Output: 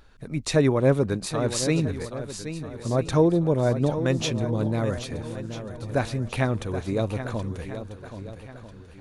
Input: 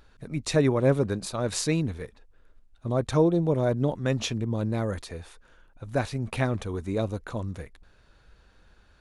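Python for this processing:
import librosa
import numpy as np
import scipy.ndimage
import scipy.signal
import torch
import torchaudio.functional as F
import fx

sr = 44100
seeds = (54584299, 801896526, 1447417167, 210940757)

y = fx.echo_swing(x, sr, ms=1293, ratio=1.5, feedback_pct=30, wet_db=-10.5)
y = y * 10.0 ** (2.0 / 20.0)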